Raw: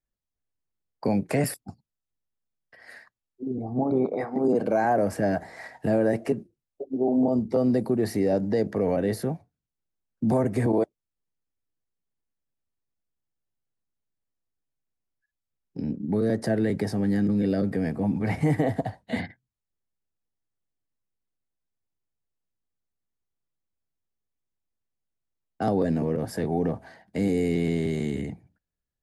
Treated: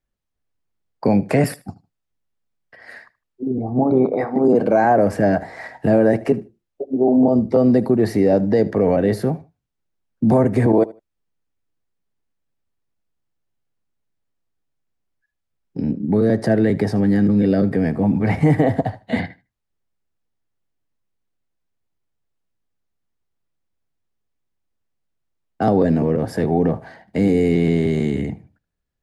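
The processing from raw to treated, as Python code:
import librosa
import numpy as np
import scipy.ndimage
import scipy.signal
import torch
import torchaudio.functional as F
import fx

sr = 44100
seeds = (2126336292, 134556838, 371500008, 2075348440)

p1 = fx.high_shelf(x, sr, hz=5200.0, db=-10.0)
p2 = p1 + fx.echo_feedback(p1, sr, ms=77, feedback_pct=19, wet_db=-20, dry=0)
y = p2 * 10.0 ** (8.0 / 20.0)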